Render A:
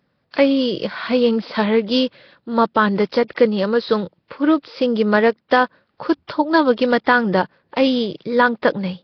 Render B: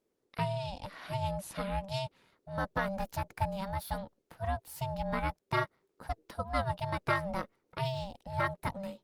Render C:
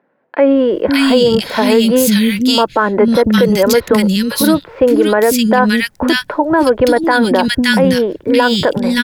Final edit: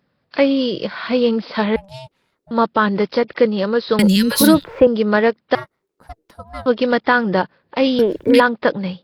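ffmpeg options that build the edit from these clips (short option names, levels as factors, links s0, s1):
-filter_complex "[1:a]asplit=2[s0][s1];[2:a]asplit=2[s2][s3];[0:a]asplit=5[s4][s5][s6][s7][s8];[s4]atrim=end=1.762[s9];[s0]atrim=start=1.758:end=2.512[s10];[s5]atrim=start=2.508:end=3.992[s11];[s2]atrim=start=3.988:end=4.872[s12];[s6]atrim=start=4.868:end=5.552[s13];[s1]atrim=start=5.548:end=6.662[s14];[s7]atrim=start=6.658:end=7.992[s15];[s3]atrim=start=7.988:end=8.402[s16];[s8]atrim=start=8.398[s17];[s9][s10]acrossfade=d=0.004:c1=hsin:c2=hsin[s18];[s18][s11]acrossfade=d=0.004:c1=hsin:c2=hsin[s19];[s19][s12]acrossfade=d=0.004:c1=hsin:c2=hsin[s20];[s20][s13]acrossfade=d=0.004:c1=hsin:c2=hsin[s21];[s21][s14]acrossfade=d=0.004:c1=hsin:c2=hsin[s22];[s22][s15]acrossfade=d=0.004:c1=hsin:c2=hsin[s23];[s23][s16]acrossfade=d=0.004:c1=hsin:c2=hsin[s24];[s24][s17]acrossfade=d=0.004:c1=hsin:c2=hsin"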